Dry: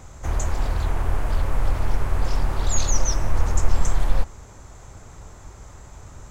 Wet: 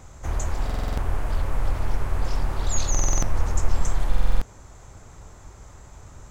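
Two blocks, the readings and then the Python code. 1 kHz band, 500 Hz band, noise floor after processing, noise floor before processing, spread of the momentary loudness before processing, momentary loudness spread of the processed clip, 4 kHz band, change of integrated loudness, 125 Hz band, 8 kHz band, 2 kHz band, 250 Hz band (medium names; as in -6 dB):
-2.0 dB, -2.0 dB, -47 dBFS, -44 dBFS, 20 LU, 21 LU, -2.5 dB, -2.0 dB, -2.0 dB, no reading, -2.0 dB, -1.0 dB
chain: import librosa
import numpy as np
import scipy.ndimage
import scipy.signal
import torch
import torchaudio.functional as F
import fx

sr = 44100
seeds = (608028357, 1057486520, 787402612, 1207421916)

y = fx.buffer_glitch(x, sr, at_s=(0.65, 2.9, 4.09), block=2048, repeats=6)
y = y * librosa.db_to_amplitude(-2.5)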